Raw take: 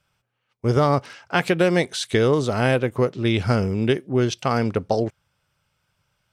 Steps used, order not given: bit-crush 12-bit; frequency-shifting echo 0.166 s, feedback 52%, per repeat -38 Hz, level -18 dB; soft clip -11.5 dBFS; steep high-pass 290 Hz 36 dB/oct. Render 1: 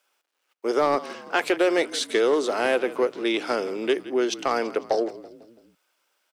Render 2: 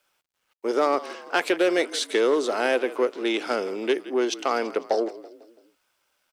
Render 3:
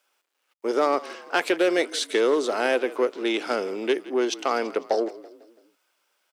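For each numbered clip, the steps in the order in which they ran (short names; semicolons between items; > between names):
bit-crush > steep high-pass > frequency-shifting echo > soft clip; frequency-shifting echo > soft clip > steep high-pass > bit-crush; soft clip > frequency-shifting echo > bit-crush > steep high-pass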